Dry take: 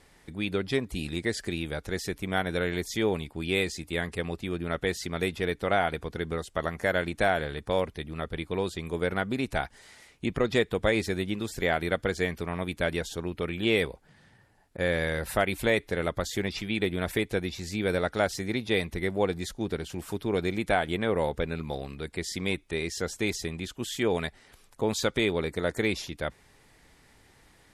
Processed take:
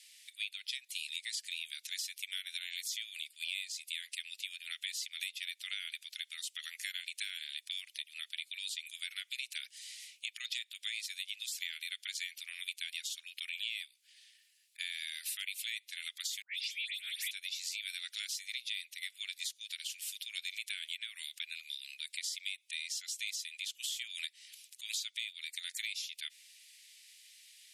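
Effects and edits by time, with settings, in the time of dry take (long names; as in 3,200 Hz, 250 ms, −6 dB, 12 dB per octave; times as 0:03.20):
0:16.42–0:17.31: all-pass dispersion highs, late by 130 ms, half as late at 2,000 Hz
whole clip: Butterworth high-pass 2,500 Hz 36 dB per octave; downward compressor 6 to 1, threshold −44 dBFS; level +7.5 dB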